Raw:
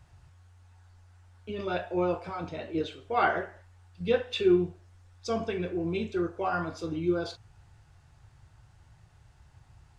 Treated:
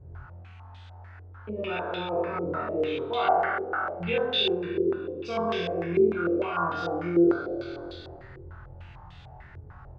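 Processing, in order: spectral trails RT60 1.76 s; compressor 2:1, threshold -47 dBFS, peak gain reduction 16 dB; flutter echo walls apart 4 m, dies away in 0.51 s; stepped low-pass 6.7 Hz 420–3500 Hz; gain +4.5 dB

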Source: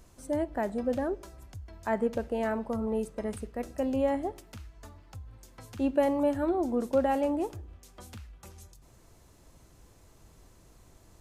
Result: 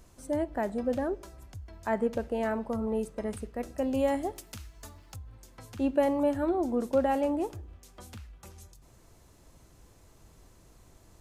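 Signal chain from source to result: 3.94–5.16 high shelf 3400 Hz +10.5 dB

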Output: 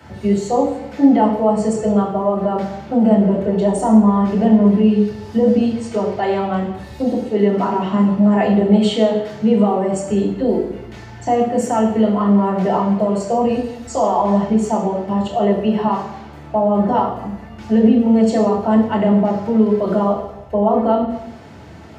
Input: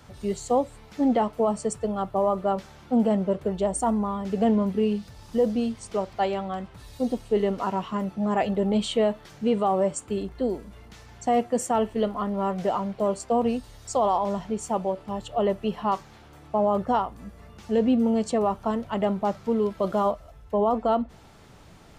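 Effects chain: limiter -20 dBFS, peak gain reduction 6.5 dB; reverb RT60 0.90 s, pre-delay 3 ms, DRR -2.5 dB; gain -1 dB

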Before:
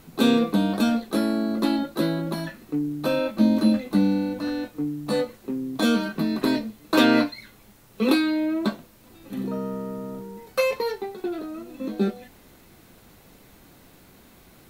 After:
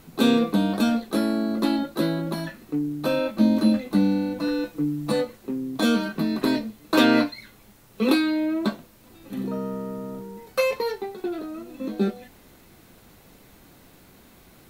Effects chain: 4.39–5.12 comb 6 ms, depth 81%

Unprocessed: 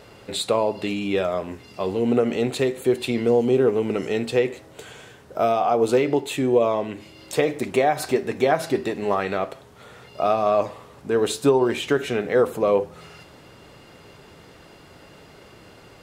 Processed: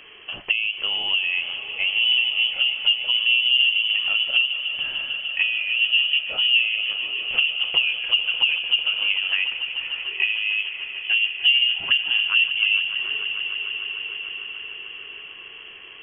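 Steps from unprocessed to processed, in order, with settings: treble ducked by the level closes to 450 Hz, closed at -17.5 dBFS; inverted band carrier 3200 Hz; swelling echo 0.149 s, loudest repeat 5, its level -15 dB; gain +1.5 dB

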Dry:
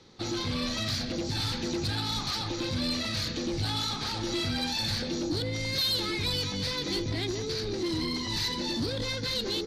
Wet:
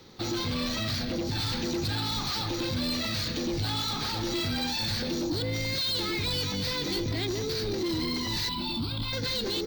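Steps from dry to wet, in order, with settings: 0.76–1.39 high shelf 6400 Hz -8 dB; 8.49–9.13 fixed phaser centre 1800 Hz, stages 6; soft clip -23.5 dBFS, distortion -22 dB; careless resampling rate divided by 2×, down filtered, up hold; limiter -28 dBFS, peak gain reduction 4.5 dB; gain +4 dB

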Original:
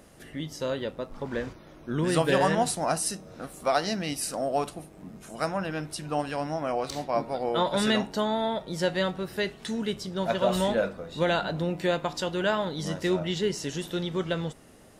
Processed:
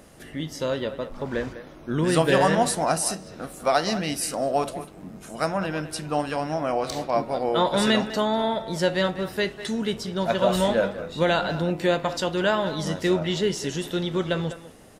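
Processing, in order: speakerphone echo 0.2 s, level -12 dB; on a send at -17.5 dB: reverb, pre-delay 16 ms; on the sum: gain +3.5 dB

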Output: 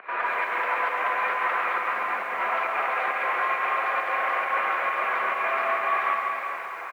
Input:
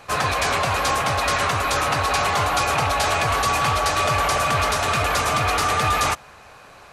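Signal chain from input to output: differentiator; in parallel at 0 dB: limiter -26 dBFS, peak gain reduction 10.5 dB; on the sum: upward compressor, threshold -27 dBFS; 1.78–2.4 hard clip -30 dBFS, distortion -16 dB; pump 135 bpm, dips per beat 1, -18 dB, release 0.161 s; mistuned SSB -68 Hz 320–2200 Hz; tapped delay 0.137/0.253/0.257/0.473/0.606/0.669 s -8.5/-20/-15/-16.5/-20/-16.5 dB; on a send at -3 dB: reverb, pre-delay 3 ms; on the sum: lo-fi delay 0.197 s, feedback 35%, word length 9-bit, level -10 dB; gain +5.5 dB

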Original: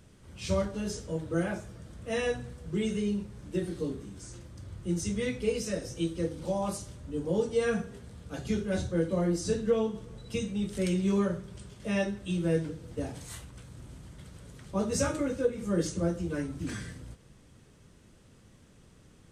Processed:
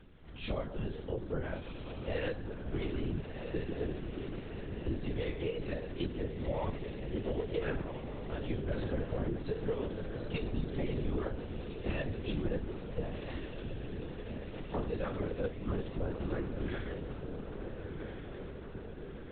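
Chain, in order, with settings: compressor, threshold -32 dBFS, peak gain reduction 11 dB; diffused feedback echo 1.393 s, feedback 65%, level -6.5 dB; LPC vocoder at 8 kHz whisper

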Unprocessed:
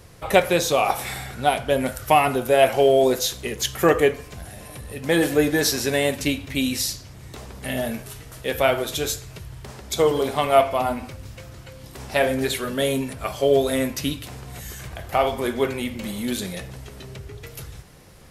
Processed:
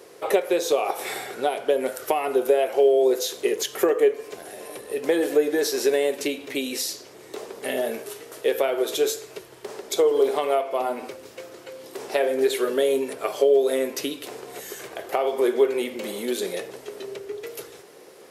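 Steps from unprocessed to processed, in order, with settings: compressor 6:1, threshold -24 dBFS, peak gain reduction 13 dB; resonant high-pass 400 Hz, resonance Q 3.6

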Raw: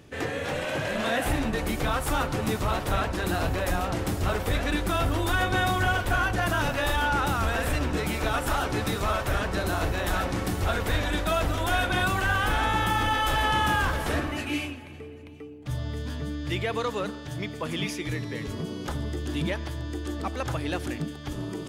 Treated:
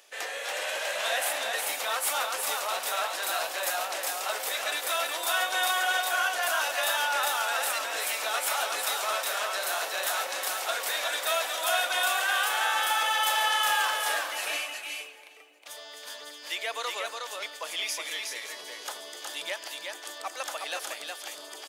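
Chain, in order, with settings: Chebyshev high-pass 600 Hz, order 3; high shelf 2900 Hz +11 dB; echo 0.365 s -4 dB; gain -3.5 dB

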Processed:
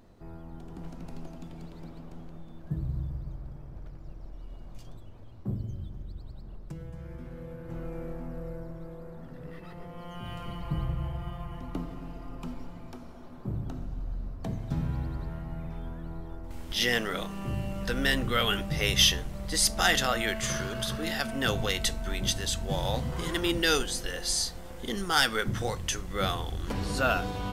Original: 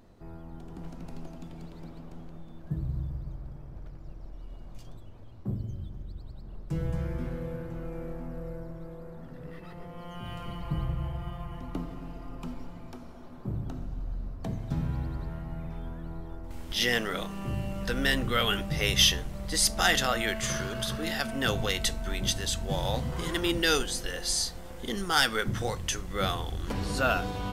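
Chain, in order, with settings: 6.42–7.69 compressor 12:1, threshold -37 dBFS, peak gain reduction 12 dB

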